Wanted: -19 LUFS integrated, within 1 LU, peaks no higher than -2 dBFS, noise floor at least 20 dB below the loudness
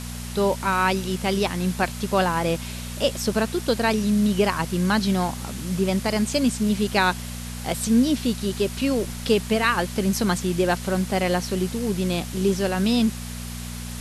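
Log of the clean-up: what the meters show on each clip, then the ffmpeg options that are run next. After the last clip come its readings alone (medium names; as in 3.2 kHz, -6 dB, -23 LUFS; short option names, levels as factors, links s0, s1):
hum 60 Hz; highest harmonic 240 Hz; hum level -31 dBFS; noise floor -33 dBFS; noise floor target -43 dBFS; loudness -23.0 LUFS; peak level -7.5 dBFS; loudness target -19.0 LUFS
-> -af "bandreject=f=60:t=h:w=4,bandreject=f=120:t=h:w=4,bandreject=f=180:t=h:w=4,bandreject=f=240:t=h:w=4"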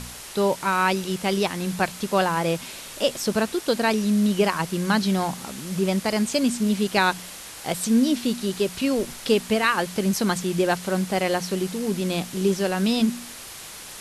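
hum not found; noise floor -40 dBFS; noise floor target -44 dBFS
-> -af "afftdn=nr=6:nf=-40"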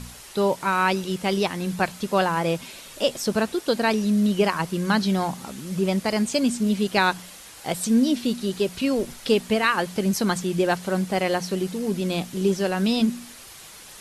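noise floor -44 dBFS; loudness -23.5 LUFS; peak level -7.5 dBFS; loudness target -19.0 LUFS
-> -af "volume=1.68"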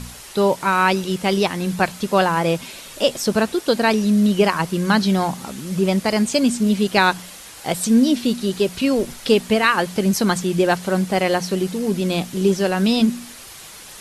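loudness -19.0 LUFS; peak level -3.0 dBFS; noise floor -39 dBFS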